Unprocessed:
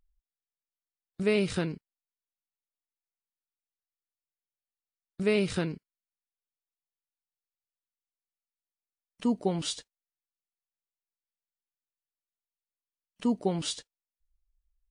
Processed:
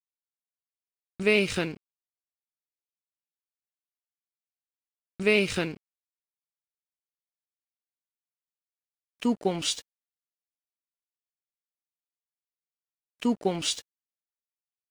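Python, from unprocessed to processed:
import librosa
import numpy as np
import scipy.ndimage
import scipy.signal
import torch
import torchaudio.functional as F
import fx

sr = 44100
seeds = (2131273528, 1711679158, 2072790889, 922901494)

y = fx.graphic_eq_15(x, sr, hz=(160, 2500, 6300), db=(-5, 8, 4))
y = np.sign(y) * np.maximum(np.abs(y) - 10.0 ** (-50.5 / 20.0), 0.0)
y = y * librosa.db_to_amplitude(3.0)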